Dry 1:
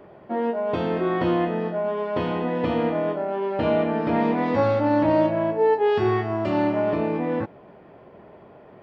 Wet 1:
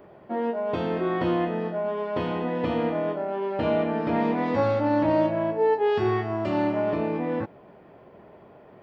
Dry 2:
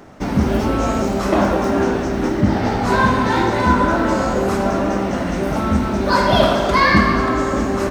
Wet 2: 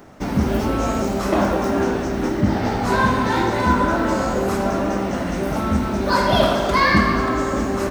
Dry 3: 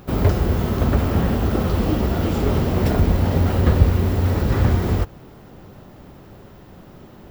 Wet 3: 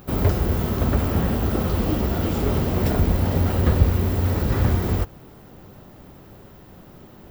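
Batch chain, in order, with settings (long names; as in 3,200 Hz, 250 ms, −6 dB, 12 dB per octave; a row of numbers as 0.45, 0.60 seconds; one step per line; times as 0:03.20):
high-shelf EQ 11,000 Hz +8 dB
level −2.5 dB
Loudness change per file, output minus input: −2.5, −2.5, −2.0 LU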